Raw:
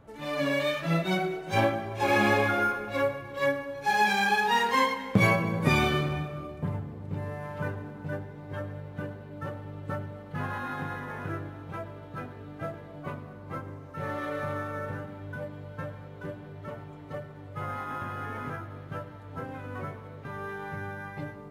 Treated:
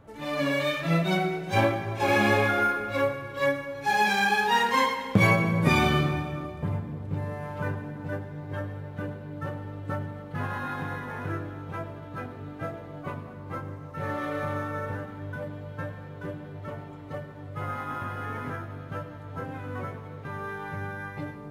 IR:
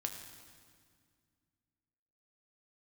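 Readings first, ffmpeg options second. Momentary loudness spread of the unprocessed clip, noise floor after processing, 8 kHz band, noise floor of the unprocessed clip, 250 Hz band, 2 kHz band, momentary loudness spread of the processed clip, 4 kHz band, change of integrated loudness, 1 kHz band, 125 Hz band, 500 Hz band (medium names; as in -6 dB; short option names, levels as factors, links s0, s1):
17 LU, -42 dBFS, +1.5 dB, -45 dBFS, +2.0 dB, +1.5 dB, 16 LU, +1.5 dB, +1.5 dB, +1.5 dB, +3.0 dB, +1.5 dB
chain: -filter_complex "[0:a]asplit=2[s0][s1];[1:a]atrim=start_sample=2205[s2];[s1][s2]afir=irnorm=-1:irlink=0,volume=1.06[s3];[s0][s3]amix=inputs=2:normalize=0,volume=0.631"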